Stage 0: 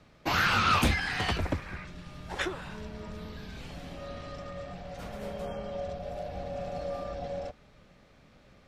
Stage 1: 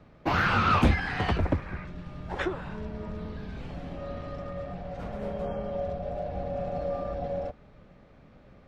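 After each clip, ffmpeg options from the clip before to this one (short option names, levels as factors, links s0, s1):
-af "lowpass=f=1100:p=1,volume=1.78"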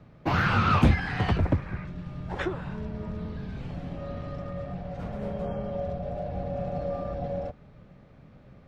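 -af "equalizer=f=130:t=o:w=1.3:g=7,volume=0.891"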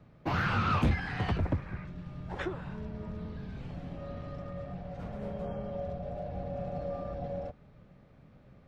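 -af "asoftclip=type=tanh:threshold=0.237,volume=0.562"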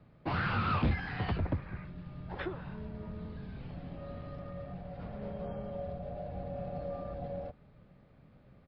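-af "aresample=11025,aresample=44100,volume=0.75"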